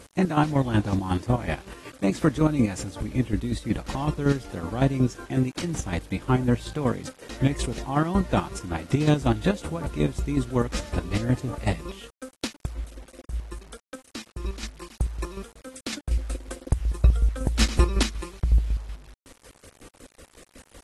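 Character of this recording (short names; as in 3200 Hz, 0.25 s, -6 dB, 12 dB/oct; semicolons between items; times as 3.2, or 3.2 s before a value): chopped level 5.4 Hz, depth 65%, duty 35%; a quantiser's noise floor 8-bit, dither none; AAC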